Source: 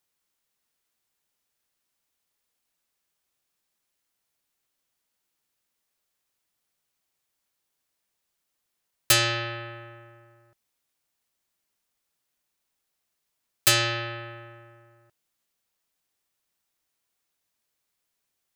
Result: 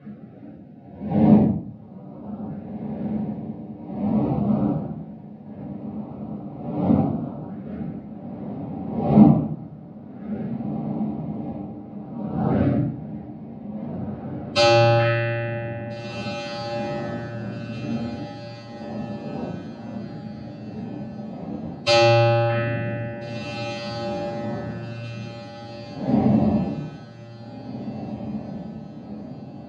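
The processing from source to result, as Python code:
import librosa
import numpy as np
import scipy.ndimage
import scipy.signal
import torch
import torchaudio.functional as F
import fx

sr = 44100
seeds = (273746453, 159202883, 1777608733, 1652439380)

y = fx.dmg_wind(x, sr, seeds[0], corner_hz=360.0, level_db=-40.0)
y = fx.hum_notches(y, sr, base_hz=50, count=3)
y = fx.filter_lfo_notch(y, sr, shape='saw_up', hz=0.64, low_hz=910.0, high_hz=2000.0, q=0.81)
y = fx.stretch_vocoder(y, sr, factor=1.6)
y = fx.cabinet(y, sr, low_hz=110.0, low_slope=24, high_hz=3900.0, hz=(210.0, 390.0, 730.0, 1400.0, 3300.0), db=(4, -7, 5, 4, -5))
y = fx.echo_diffused(y, sr, ms=1821, feedback_pct=43, wet_db=-11)
y = fx.room_shoebox(y, sr, seeds[1], volume_m3=450.0, walls='furnished', distance_m=5.3)
y = y * librosa.db_to_amplitude(3.5)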